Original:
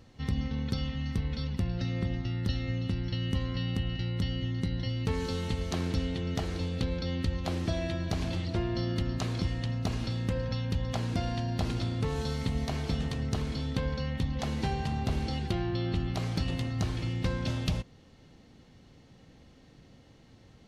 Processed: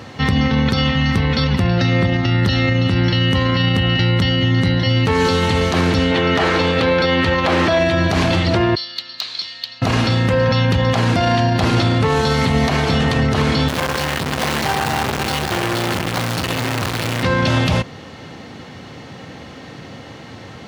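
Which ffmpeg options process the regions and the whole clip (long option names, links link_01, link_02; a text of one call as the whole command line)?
ffmpeg -i in.wav -filter_complex "[0:a]asettb=1/sr,asplit=3[link_01][link_02][link_03];[link_01]atrim=end=6.114[link_04];[link_02]atrim=start=6.11:end=7.79,asetpts=PTS-STARTPTS,afade=type=in:duration=0.004:curve=qsin,afade=type=out:start_time=1.676:duration=0.004:curve=qsin,bandreject=frequency=740:width=17,asplit=2[link_05][link_06];[link_06]highpass=frequency=720:poles=1,volume=13dB,asoftclip=type=tanh:threshold=-16.5dB[link_07];[link_05][link_07]amix=inputs=2:normalize=0,lowpass=frequency=2100:poles=1,volume=-6dB[link_08];[link_03]atrim=start=7.786[link_09];[link_04][link_08]acrossfade=duration=0.004:curve1=hsin:curve2=qsin[link_10];[link_10][link_09]acrossfade=duration=0.004:curve1=qsin:curve2=hsin,asettb=1/sr,asplit=3[link_11][link_12][link_13];[link_11]atrim=end=8.754[link_14];[link_12]atrim=start=8.75:end=9.82,asetpts=PTS-STARTPTS,afade=type=in:duration=0.004:curve=qsin,afade=type=out:start_time=1.066:duration=0.004:curve=qsin,bandpass=frequency=4200:width_type=q:width=4.8,asoftclip=type=hard:threshold=-33.5dB[link_15];[link_13]atrim=start=9.816[link_16];[link_14][link_15]acrossfade=duration=0.004:curve1=hsin:curve2=qsin[link_17];[link_17][link_16]acrossfade=duration=0.004:curve1=qsin:curve2=hsin,asettb=1/sr,asplit=3[link_18][link_19][link_20];[link_18]atrim=end=13.684[link_21];[link_19]atrim=start=13.68:end=17.23,asetpts=PTS-STARTPTS,afade=type=in:duration=0.004:curve=qsin,afade=type=out:start_time=3.546:duration=0.004:curve=qsin,equalizer=frequency=5200:width=0.64:gain=3,acrusher=bits=7:dc=4:mix=0:aa=0.000001,aeval=exprs='(tanh(100*val(0)+0.7)-tanh(0.7))/100':channel_layout=same[link_22];[link_20]atrim=start=17.226[link_23];[link_21][link_22]acrossfade=duration=0.004:curve1=hsin:curve2=qsin[link_24];[link_24][link_23]acrossfade=duration=0.004:curve1=qsin:curve2=hsin,highpass=frequency=79:width=0.5412,highpass=frequency=79:width=1.3066,equalizer=frequency=1300:width=0.4:gain=9,alimiter=level_in=25dB:limit=-1dB:release=50:level=0:latency=1,volume=-6.5dB" out.wav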